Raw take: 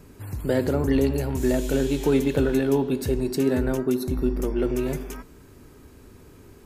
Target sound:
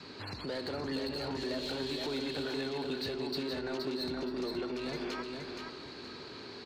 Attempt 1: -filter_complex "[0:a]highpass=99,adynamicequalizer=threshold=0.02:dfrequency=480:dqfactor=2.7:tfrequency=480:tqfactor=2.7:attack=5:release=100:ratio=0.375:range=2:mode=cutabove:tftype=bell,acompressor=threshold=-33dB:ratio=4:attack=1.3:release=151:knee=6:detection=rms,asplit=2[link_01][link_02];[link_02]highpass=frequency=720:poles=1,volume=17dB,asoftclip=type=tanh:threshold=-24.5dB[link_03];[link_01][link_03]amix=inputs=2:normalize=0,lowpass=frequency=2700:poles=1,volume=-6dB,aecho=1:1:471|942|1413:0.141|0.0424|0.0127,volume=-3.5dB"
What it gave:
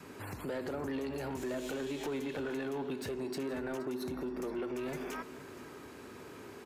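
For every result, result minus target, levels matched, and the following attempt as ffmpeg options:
4,000 Hz band −10.5 dB; echo-to-direct −12 dB
-filter_complex "[0:a]highpass=99,adynamicequalizer=threshold=0.02:dfrequency=480:dqfactor=2.7:tfrequency=480:tqfactor=2.7:attack=5:release=100:ratio=0.375:range=2:mode=cutabove:tftype=bell,acompressor=threshold=-33dB:ratio=4:attack=1.3:release=151:knee=6:detection=rms,lowpass=frequency=4300:width_type=q:width=11,asplit=2[link_01][link_02];[link_02]highpass=frequency=720:poles=1,volume=17dB,asoftclip=type=tanh:threshold=-24.5dB[link_03];[link_01][link_03]amix=inputs=2:normalize=0,lowpass=frequency=2700:poles=1,volume=-6dB,aecho=1:1:471|942|1413:0.141|0.0424|0.0127,volume=-3.5dB"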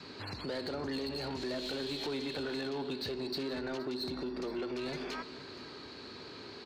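echo-to-direct −12 dB
-filter_complex "[0:a]highpass=99,adynamicequalizer=threshold=0.02:dfrequency=480:dqfactor=2.7:tfrequency=480:tqfactor=2.7:attack=5:release=100:ratio=0.375:range=2:mode=cutabove:tftype=bell,acompressor=threshold=-33dB:ratio=4:attack=1.3:release=151:knee=6:detection=rms,lowpass=frequency=4300:width_type=q:width=11,asplit=2[link_01][link_02];[link_02]highpass=frequency=720:poles=1,volume=17dB,asoftclip=type=tanh:threshold=-24.5dB[link_03];[link_01][link_03]amix=inputs=2:normalize=0,lowpass=frequency=2700:poles=1,volume=-6dB,aecho=1:1:471|942|1413|1884:0.562|0.169|0.0506|0.0152,volume=-3.5dB"

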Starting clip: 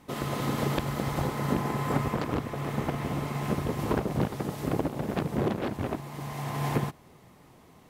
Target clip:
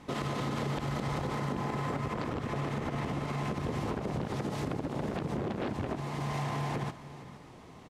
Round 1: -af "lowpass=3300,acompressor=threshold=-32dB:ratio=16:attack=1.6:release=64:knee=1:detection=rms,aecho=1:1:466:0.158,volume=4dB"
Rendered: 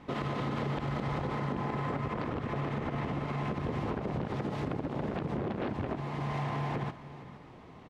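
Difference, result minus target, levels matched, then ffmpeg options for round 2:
8,000 Hz band −11.0 dB
-af "lowpass=7100,acompressor=threshold=-32dB:ratio=16:attack=1.6:release=64:knee=1:detection=rms,aecho=1:1:466:0.158,volume=4dB"

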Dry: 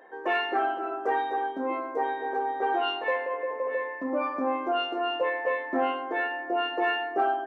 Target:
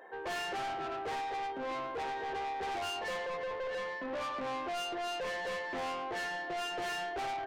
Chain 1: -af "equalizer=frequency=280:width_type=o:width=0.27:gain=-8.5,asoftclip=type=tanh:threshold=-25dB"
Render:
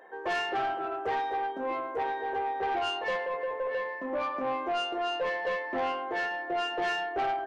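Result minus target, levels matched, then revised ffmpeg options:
soft clipping: distortion −8 dB
-af "equalizer=frequency=280:width_type=o:width=0.27:gain=-8.5,asoftclip=type=tanh:threshold=-35dB"

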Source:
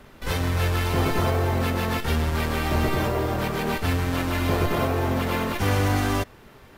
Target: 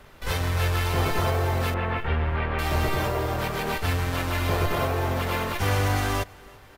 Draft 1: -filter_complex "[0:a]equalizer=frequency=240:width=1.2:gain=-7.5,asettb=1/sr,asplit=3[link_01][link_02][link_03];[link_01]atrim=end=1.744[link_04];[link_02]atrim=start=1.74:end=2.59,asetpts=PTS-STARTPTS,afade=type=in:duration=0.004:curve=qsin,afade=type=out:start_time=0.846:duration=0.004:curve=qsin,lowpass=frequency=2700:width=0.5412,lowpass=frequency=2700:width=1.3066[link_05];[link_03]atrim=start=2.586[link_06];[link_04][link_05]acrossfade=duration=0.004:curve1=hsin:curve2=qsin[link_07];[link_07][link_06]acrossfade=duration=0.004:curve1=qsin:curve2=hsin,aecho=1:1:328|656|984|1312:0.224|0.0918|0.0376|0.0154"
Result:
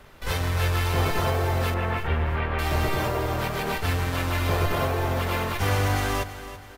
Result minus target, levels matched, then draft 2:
echo-to-direct +11.5 dB
-filter_complex "[0:a]equalizer=frequency=240:width=1.2:gain=-7.5,asettb=1/sr,asplit=3[link_01][link_02][link_03];[link_01]atrim=end=1.744[link_04];[link_02]atrim=start=1.74:end=2.59,asetpts=PTS-STARTPTS,afade=type=in:duration=0.004:curve=qsin,afade=type=out:start_time=0.846:duration=0.004:curve=qsin,lowpass=frequency=2700:width=0.5412,lowpass=frequency=2700:width=1.3066[link_05];[link_03]atrim=start=2.586[link_06];[link_04][link_05]acrossfade=duration=0.004:curve1=hsin:curve2=qsin[link_07];[link_07][link_06]acrossfade=duration=0.004:curve1=qsin:curve2=hsin,aecho=1:1:328|656|984:0.0596|0.0244|0.01"

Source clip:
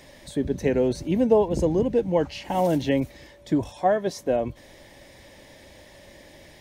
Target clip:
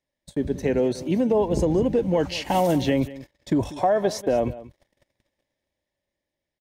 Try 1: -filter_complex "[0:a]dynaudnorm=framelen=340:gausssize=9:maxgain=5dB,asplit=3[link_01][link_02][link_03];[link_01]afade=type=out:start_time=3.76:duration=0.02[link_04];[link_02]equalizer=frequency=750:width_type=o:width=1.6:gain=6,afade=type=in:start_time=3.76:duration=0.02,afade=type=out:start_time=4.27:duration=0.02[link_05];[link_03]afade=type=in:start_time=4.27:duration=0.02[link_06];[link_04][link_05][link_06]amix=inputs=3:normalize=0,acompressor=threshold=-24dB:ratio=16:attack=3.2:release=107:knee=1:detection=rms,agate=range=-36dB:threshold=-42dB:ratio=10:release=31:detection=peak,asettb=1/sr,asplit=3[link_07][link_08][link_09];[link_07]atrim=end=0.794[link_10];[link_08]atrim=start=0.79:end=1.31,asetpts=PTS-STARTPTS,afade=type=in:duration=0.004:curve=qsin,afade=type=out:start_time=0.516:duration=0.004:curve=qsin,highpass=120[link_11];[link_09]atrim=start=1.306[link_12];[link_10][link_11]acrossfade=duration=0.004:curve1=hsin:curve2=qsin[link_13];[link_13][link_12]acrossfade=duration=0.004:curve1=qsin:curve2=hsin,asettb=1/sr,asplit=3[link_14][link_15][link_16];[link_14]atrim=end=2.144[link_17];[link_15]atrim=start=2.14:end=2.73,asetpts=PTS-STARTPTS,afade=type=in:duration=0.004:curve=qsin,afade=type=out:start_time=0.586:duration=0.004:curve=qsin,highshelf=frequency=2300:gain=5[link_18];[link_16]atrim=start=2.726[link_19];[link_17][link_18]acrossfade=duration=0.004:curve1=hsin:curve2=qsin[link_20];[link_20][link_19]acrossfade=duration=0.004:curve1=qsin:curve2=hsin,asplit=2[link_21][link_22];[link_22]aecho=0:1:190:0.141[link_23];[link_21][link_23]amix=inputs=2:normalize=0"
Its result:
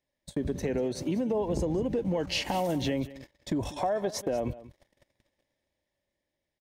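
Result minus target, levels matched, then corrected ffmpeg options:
downward compressor: peak gain reduction +8.5 dB
-filter_complex "[0:a]dynaudnorm=framelen=340:gausssize=9:maxgain=5dB,asplit=3[link_01][link_02][link_03];[link_01]afade=type=out:start_time=3.76:duration=0.02[link_04];[link_02]equalizer=frequency=750:width_type=o:width=1.6:gain=6,afade=type=in:start_time=3.76:duration=0.02,afade=type=out:start_time=4.27:duration=0.02[link_05];[link_03]afade=type=in:start_time=4.27:duration=0.02[link_06];[link_04][link_05][link_06]amix=inputs=3:normalize=0,acompressor=threshold=-15dB:ratio=16:attack=3.2:release=107:knee=1:detection=rms,agate=range=-36dB:threshold=-42dB:ratio=10:release=31:detection=peak,asettb=1/sr,asplit=3[link_07][link_08][link_09];[link_07]atrim=end=0.794[link_10];[link_08]atrim=start=0.79:end=1.31,asetpts=PTS-STARTPTS,afade=type=in:duration=0.004:curve=qsin,afade=type=out:start_time=0.516:duration=0.004:curve=qsin,highpass=120[link_11];[link_09]atrim=start=1.306[link_12];[link_10][link_11]acrossfade=duration=0.004:curve1=hsin:curve2=qsin[link_13];[link_13][link_12]acrossfade=duration=0.004:curve1=qsin:curve2=hsin,asettb=1/sr,asplit=3[link_14][link_15][link_16];[link_14]atrim=end=2.144[link_17];[link_15]atrim=start=2.14:end=2.73,asetpts=PTS-STARTPTS,afade=type=in:duration=0.004:curve=qsin,afade=type=out:start_time=0.586:duration=0.004:curve=qsin,highshelf=frequency=2300:gain=5[link_18];[link_16]atrim=start=2.726[link_19];[link_17][link_18]acrossfade=duration=0.004:curve1=hsin:curve2=qsin[link_20];[link_20][link_19]acrossfade=duration=0.004:curve1=qsin:curve2=hsin,asplit=2[link_21][link_22];[link_22]aecho=0:1:190:0.141[link_23];[link_21][link_23]amix=inputs=2:normalize=0"

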